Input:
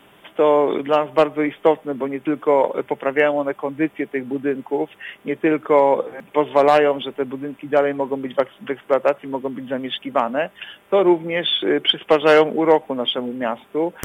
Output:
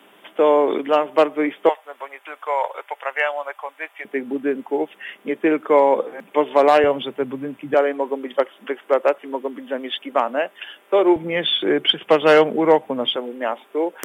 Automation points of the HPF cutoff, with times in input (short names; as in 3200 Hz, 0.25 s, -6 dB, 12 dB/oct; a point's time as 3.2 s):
HPF 24 dB/oct
210 Hz
from 1.69 s 690 Hz
from 4.05 s 200 Hz
from 6.84 s 80 Hz
from 7.74 s 280 Hz
from 11.16 s 100 Hz
from 13.16 s 300 Hz